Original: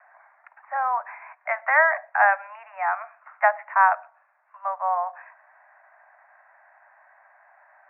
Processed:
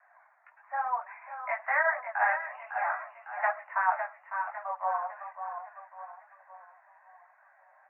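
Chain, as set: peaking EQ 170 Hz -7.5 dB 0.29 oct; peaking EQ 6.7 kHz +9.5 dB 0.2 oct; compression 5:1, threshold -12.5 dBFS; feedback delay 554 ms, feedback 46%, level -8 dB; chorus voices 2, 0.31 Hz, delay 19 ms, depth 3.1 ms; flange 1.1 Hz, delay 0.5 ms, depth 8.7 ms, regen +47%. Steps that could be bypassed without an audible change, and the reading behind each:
peaking EQ 170 Hz: input has nothing below 510 Hz; peaking EQ 6.7 kHz: input has nothing above 2.4 kHz

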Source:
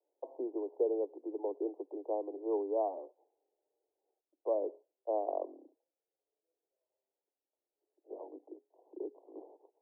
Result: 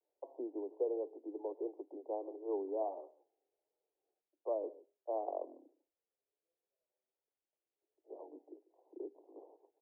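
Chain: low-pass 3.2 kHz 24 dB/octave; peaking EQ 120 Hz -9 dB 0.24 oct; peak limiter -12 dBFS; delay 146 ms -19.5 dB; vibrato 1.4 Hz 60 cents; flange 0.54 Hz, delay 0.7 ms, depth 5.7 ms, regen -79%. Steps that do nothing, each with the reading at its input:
low-pass 3.2 kHz: input has nothing above 1.1 kHz; peaking EQ 120 Hz: input has nothing below 250 Hz; peak limiter -12 dBFS: peak at its input -21.5 dBFS

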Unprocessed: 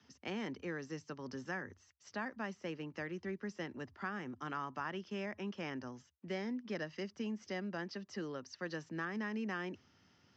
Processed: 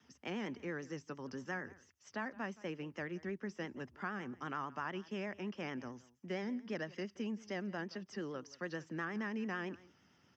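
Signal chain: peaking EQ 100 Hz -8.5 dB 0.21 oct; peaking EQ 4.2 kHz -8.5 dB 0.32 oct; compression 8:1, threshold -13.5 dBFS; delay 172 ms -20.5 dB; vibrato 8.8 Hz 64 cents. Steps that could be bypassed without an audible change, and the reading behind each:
compression, threshold -13.5 dBFS: peak at its input -27.0 dBFS

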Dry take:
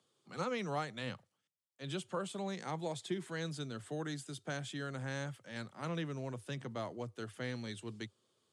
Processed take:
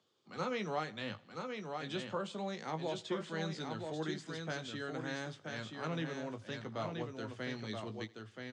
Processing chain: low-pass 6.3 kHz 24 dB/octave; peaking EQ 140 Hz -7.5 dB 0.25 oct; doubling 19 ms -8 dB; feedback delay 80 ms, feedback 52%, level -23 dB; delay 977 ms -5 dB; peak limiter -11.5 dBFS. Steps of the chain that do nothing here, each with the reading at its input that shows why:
peak limiter -11.5 dBFS: peak at its input -24.5 dBFS

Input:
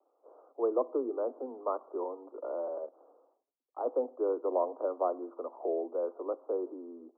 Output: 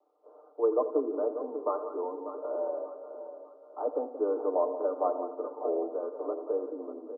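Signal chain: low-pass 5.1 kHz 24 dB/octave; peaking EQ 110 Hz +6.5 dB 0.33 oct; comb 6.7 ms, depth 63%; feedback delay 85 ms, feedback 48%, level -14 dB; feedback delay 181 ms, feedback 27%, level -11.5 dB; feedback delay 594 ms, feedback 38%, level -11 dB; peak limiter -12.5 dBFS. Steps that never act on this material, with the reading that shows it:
low-pass 5.1 kHz: input has nothing above 1.3 kHz; peaking EQ 110 Hz: input has nothing below 230 Hz; peak limiter -12.5 dBFS: peak at its input -15.0 dBFS

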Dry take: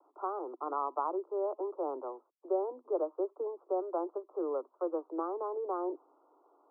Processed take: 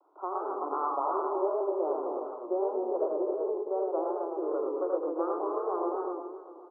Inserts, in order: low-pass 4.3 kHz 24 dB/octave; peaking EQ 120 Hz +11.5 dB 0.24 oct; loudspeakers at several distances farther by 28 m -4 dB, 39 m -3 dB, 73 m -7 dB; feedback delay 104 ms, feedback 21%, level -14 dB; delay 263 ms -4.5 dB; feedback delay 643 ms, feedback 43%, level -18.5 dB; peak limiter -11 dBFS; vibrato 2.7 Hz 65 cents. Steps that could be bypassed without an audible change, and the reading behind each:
low-pass 4.3 kHz: input has nothing above 1.4 kHz; peaking EQ 120 Hz: input has nothing below 240 Hz; peak limiter -11 dBFS: peak at its input -16.5 dBFS

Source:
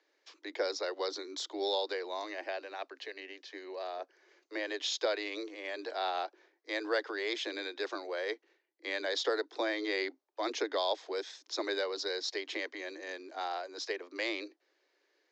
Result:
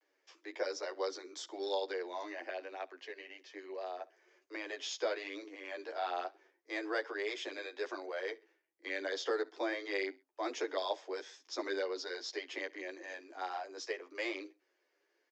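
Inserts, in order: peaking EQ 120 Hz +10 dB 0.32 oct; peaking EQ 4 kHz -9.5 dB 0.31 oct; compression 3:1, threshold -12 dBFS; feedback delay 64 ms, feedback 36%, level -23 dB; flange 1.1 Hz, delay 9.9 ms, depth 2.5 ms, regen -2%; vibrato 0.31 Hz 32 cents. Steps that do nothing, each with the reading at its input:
peaking EQ 120 Hz: input has nothing below 240 Hz; compression, threshold -12 dBFS: peak at its input -20.0 dBFS

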